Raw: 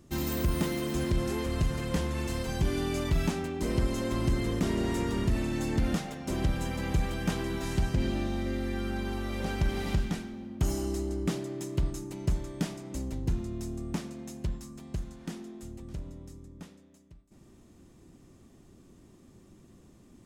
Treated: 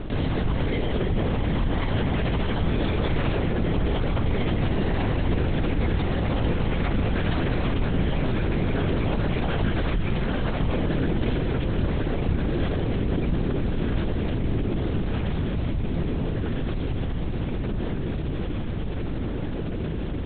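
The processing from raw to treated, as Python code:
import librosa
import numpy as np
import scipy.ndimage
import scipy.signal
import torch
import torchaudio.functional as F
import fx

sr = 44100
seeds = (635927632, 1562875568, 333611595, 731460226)

y = fx.echo_diffused(x, sr, ms=1310, feedback_pct=65, wet_db=-4.5)
y = fx.lpc_vocoder(y, sr, seeds[0], excitation='whisper', order=8)
y = fx.env_flatten(y, sr, amount_pct=70)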